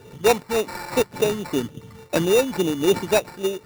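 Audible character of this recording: a buzz of ramps at a fixed pitch in blocks of 8 samples; phasing stages 12, 3.5 Hz, lowest notch 610–4700 Hz; aliases and images of a low sample rate 3.2 kHz, jitter 0%; random flutter of the level

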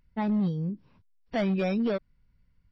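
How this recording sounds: noise floor -68 dBFS; spectral tilt -6.5 dB/octave

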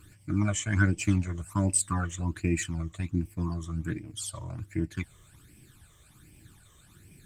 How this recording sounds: phasing stages 12, 1.3 Hz, lowest notch 250–1300 Hz; Opus

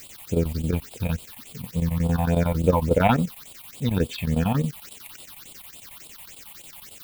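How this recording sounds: a quantiser's noise floor 8-bit, dither triangular; chopped level 11 Hz, depth 65%, duty 80%; phasing stages 6, 3.5 Hz, lowest notch 380–1700 Hz

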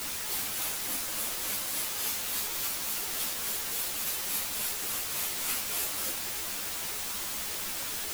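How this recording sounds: tremolo triangle 3.5 Hz, depth 85%; a quantiser's noise floor 6-bit, dither triangular; a shimmering, thickened sound

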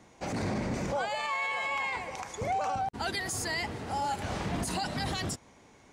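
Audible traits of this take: noise floor -58 dBFS; spectral tilt -4.0 dB/octave

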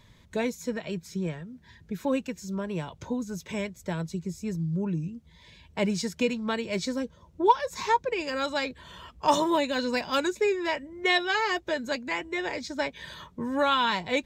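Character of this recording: noise floor -57 dBFS; spectral tilt -3.0 dB/octave

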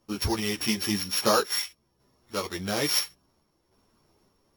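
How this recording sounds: a buzz of ramps at a fixed pitch in blocks of 8 samples; random-step tremolo; a shimmering, thickened sound

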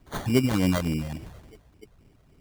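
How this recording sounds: phasing stages 12, 3.5 Hz, lowest notch 290–1600 Hz; aliases and images of a low sample rate 2.6 kHz, jitter 0%

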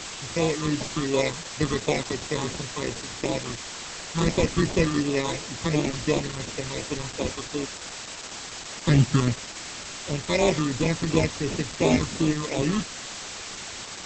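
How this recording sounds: aliases and images of a low sample rate 1.5 kHz, jitter 0%; phasing stages 8, 2.8 Hz, lowest notch 640–1600 Hz; a quantiser's noise floor 6-bit, dither triangular; Opus

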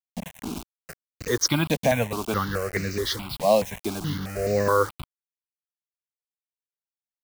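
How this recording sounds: a quantiser's noise floor 6-bit, dither none; notches that jump at a steady rate 4.7 Hz 370–3300 Hz

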